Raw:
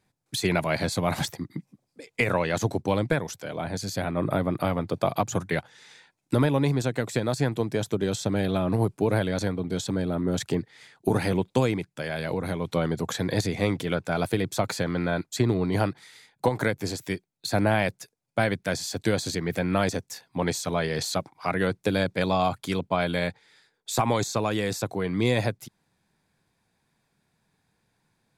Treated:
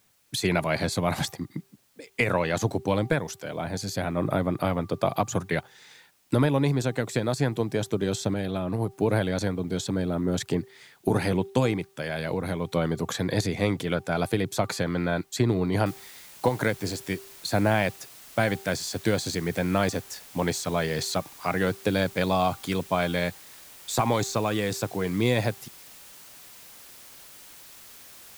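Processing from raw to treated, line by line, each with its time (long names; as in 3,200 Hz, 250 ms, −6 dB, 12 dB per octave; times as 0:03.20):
0:08.34–0:08.91: clip gain −4 dB
0:15.86: noise floor change −66 dB −48 dB
whole clip: hum removal 391 Hz, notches 3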